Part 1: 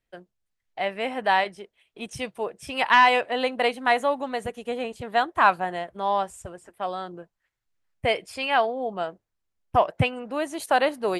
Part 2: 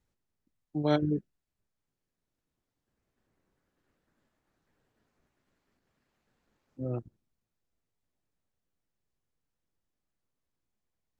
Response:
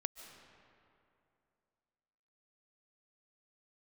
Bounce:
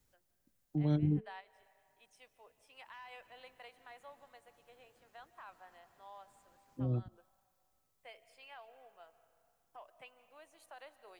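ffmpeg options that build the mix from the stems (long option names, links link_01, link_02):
-filter_complex "[0:a]highpass=620,alimiter=limit=-15dB:level=0:latency=1:release=63,volume=-16dB,asplit=2[link_01][link_02];[link_02]volume=-15.5dB[link_03];[1:a]crystalizer=i=1.5:c=0,volume=2.5dB,asplit=2[link_04][link_05];[link_05]apad=whole_len=493779[link_06];[link_01][link_06]sidechaingate=range=-17dB:threshold=-56dB:ratio=16:detection=peak[link_07];[2:a]atrim=start_sample=2205[link_08];[link_03][link_08]afir=irnorm=-1:irlink=0[link_09];[link_07][link_04][link_09]amix=inputs=3:normalize=0,bandreject=frequency=219.2:width_type=h:width=4,bandreject=frequency=438.4:width_type=h:width=4,bandreject=frequency=657.6:width_type=h:width=4,acrossover=split=250[link_10][link_11];[link_11]acompressor=threshold=-46dB:ratio=4[link_12];[link_10][link_12]amix=inputs=2:normalize=0"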